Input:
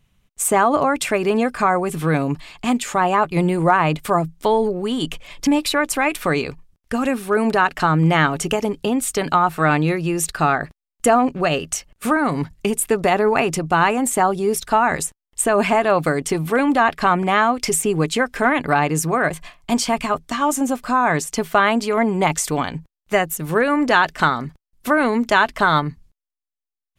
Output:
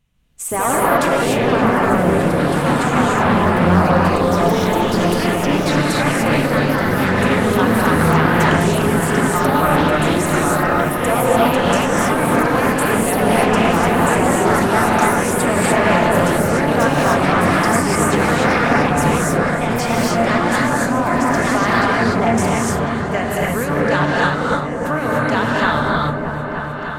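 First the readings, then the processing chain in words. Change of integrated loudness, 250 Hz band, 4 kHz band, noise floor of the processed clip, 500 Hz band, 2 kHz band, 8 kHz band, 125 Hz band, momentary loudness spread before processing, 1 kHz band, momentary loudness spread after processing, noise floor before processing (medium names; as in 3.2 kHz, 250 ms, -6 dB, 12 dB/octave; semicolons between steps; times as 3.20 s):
+3.5 dB, +4.5 dB, +3.0 dB, -23 dBFS, +3.5 dB, +3.5 dB, 0.0 dB, +6.5 dB, 7 LU, +2.5 dB, 4 LU, under -85 dBFS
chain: octave divider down 1 oct, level -4 dB; ever faster or slower copies 158 ms, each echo +3 st, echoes 2; on a send: delay with an opening low-pass 307 ms, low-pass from 400 Hz, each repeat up 1 oct, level -3 dB; on the sum: gated-style reverb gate 320 ms rising, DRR -4 dB; loudspeaker Doppler distortion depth 0.3 ms; trim -6 dB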